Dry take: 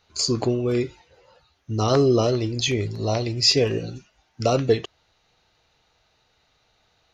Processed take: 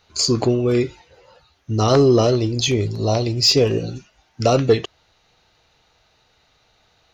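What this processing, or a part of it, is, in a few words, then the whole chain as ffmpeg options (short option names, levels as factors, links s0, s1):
saturation between pre-emphasis and de-emphasis: -filter_complex "[0:a]highshelf=f=7000:g=11.5,asoftclip=type=tanh:threshold=0.398,highshelf=f=7000:g=-11.5,asettb=1/sr,asplit=3[s0][s1][s2];[s0]atrim=end=2.344[s3];[s1]atrim=start=2.34:end=3.9,asetpts=PTS-STARTPTS,afade=t=in:d=0.004:c=qsin,afade=t=out:st=1.556:d=0.004:c=qsin,equalizer=f=1900:t=o:w=0.88:g=-6[s4];[s2]atrim=start=3.896[s5];[s3][s4]acrossfade=d=0.004:c1=hsin:c2=qsin[s6];[s6][s5]acrossfade=d=0.004:c1=qsin:c2=hsin,volume=1.78"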